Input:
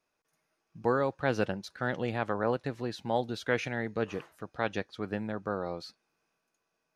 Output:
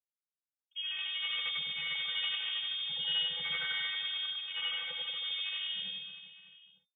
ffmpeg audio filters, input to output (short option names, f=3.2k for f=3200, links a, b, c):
-af "afftfilt=real='re':imag='-im':win_size=8192:overlap=0.75,bandreject=f=50:t=h:w=6,bandreject=f=100:t=h:w=6,bandreject=f=150:t=h:w=6,bandreject=f=200:t=h:w=6,bandreject=f=250:t=h:w=6,agate=range=-45dB:threshold=-49dB:ratio=16:detection=peak,dynaudnorm=f=320:g=7:m=10.5dB,asetrate=38170,aresample=44100,atempo=1.15535,aeval=exprs='0.355*(cos(1*acos(clip(val(0)/0.355,-1,1)))-cos(1*PI/2))+0.0562*(cos(6*acos(clip(val(0)/0.355,-1,1)))-cos(6*PI/2))+0.00891*(cos(7*acos(clip(val(0)/0.355,-1,1)))-cos(7*PI/2))+0.0251*(cos(8*acos(clip(val(0)/0.355,-1,1)))-cos(8*PI/2))':c=same,afftfilt=real='hypot(re,im)*cos(PI*b)':imag='0':win_size=512:overlap=0.75,asoftclip=type=tanh:threshold=-30dB,aecho=1:1:100|230|399|618.7|904.3:0.631|0.398|0.251|0.158|0.1,lowpass=f=3.1k:t=q:w=0.5098,lowpass=f=3.1k:t=q:w=0.6013,lowpass=f=3.1k:t=q:w=0.9,lowpass=f=3.1k:t=q:w=2.563,afreqshift=-3600"